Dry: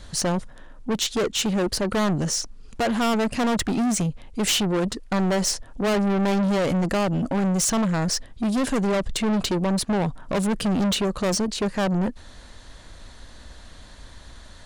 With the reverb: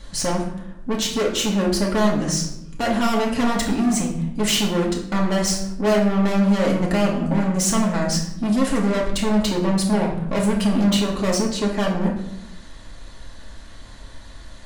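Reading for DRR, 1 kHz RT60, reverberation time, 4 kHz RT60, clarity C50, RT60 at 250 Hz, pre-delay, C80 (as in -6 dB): -3.0 dB, 0.75 s, 0.85 s, 0.55 s, 6.0 dB, 1.1 s, 4 ms, 9.0 dB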